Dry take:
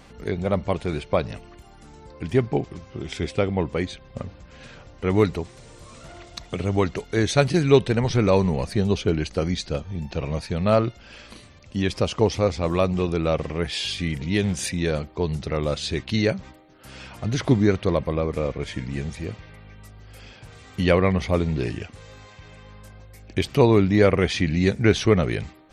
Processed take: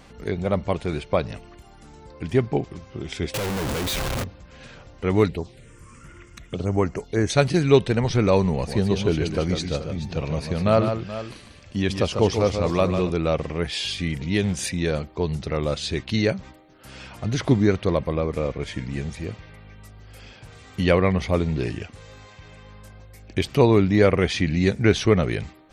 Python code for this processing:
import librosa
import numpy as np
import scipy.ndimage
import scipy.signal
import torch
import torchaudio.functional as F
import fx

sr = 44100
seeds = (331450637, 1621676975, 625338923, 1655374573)

y = fx.clip_1bit(x, sr, at=(3.34, 4.24))
y = fx.env_phaser(y, sr, low_hz=540.0, high_hz=3700.0, full_db=-22.0, at=(5.28, 7.3))
y = fx.echo_multitap(y, sr, ms=(129, 148, 428), db=(-20.0, -7.0, -13.5), at=(8.53, 13.11))